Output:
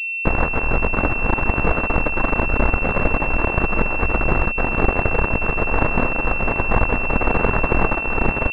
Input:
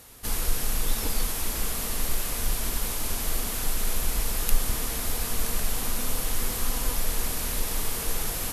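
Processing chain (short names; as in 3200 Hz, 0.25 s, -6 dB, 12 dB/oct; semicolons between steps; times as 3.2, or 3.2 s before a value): bit-crush 4-bit; negative-ratio compressor -26 dBFS, ratio -0.5; maximiser +13.5 dB; pulse-width modulation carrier 2700 Hz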